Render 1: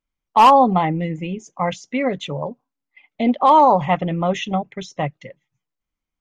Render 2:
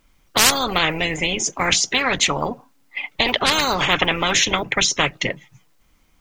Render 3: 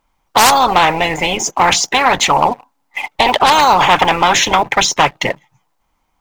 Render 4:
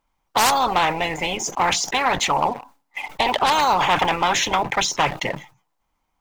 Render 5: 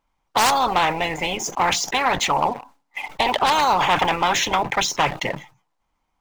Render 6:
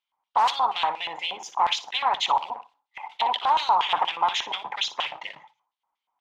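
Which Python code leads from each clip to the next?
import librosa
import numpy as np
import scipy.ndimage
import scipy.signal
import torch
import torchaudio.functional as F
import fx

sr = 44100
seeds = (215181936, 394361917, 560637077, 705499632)

y1 = fx.spectral_comp(x, sr, ratio=10.0)
y1 = y1 * librosa.db_to_amplitude(2.0)
y2 = fx.peak_eq(y1, sr, hz=870.0, db=14.5, octaves=0.88)
y2 = fx.leveller(y2, sr, passes=2)
y2 = y2 * librosa.db_to_amplitude(-4.0)
y3 = fx.sustainer(y2, sr, db_per_s=150.0)
y3 = y3 * librosa.db_to_amplitude(-8.0)
y4 = scipy.signal.medfilt(y3, 3)
y5 = fx.filter_lfo_bandpass(y4, sr, shape='square', hz=4.2, low_hz=940.0, high_hz=3300.0, q=3.2)
y5 = fx.room_flutter(y5, sr, wall_m=10.1, rt60_s=0.23)
y5 = y5 * librosa.db_to_amplitude(1.0)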